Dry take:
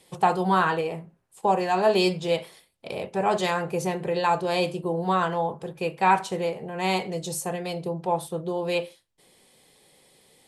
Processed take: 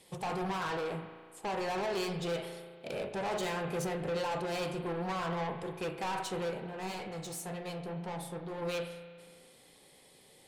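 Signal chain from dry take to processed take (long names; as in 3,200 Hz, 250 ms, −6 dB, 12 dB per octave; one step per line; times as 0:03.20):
brickwall limiter −16 dBFS, peak gain reduction 8 dB
soft clipping −31 dBFS, distortion −7 dB
0:06.60–0:08.62: flanger 2 Hz, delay 8.9 ms, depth 7.5 ms, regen +58%
convolution reverb RT60 1.8 s, pre-delay 35 ms, DRR 7 dB
level −2 dB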